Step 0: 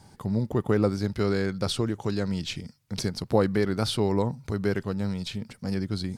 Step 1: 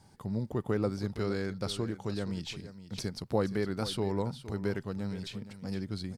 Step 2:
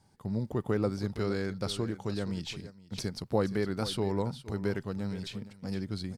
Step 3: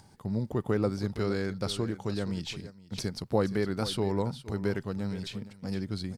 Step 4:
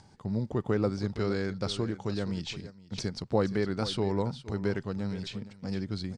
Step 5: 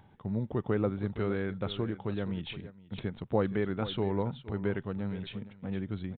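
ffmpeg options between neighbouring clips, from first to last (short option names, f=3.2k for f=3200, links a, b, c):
-af "aecho=1:1:468:0.211,volume=-7dB"
-af "agate=range=-7dB:threshold=-44dB:ratio=16:detection=peak,volume=1dB"
-af "acompressor=mode=upward:threshold=-51dB:ratio=2.5,volume=1.5dB"
-af "lowpass=f=7.7k:w=0.5412,lowpass=f=7.7k:w=1.3066"
-af "aresample=8000,aresample=44100,volume=-1.5dB"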